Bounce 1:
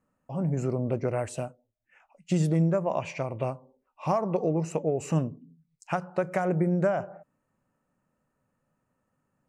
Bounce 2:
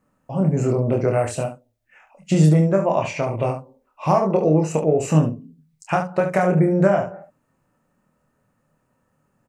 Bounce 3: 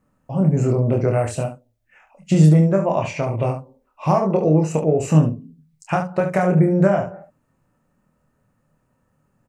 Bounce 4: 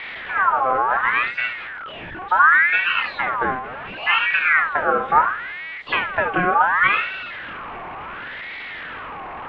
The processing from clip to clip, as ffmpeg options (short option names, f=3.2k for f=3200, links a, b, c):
-af "aecho=1:1:26|71:0.631|0.376,volume=7dB"
-af "lowshelf=f=150:g=7.5,volume=-1dB"
-af "aeval=exprs='val(0)+0.5*0.0668*sgn(val(0))':c=same,lowpass=f=1.9k:w=0.5412,lowpass=f=1.9k:w=1.3066,aeval=exprs='val(0)*sin(2*PI*1500*n/s+1500*0.4/0.7*sin(2*PI*0.7*n/s))':c=same"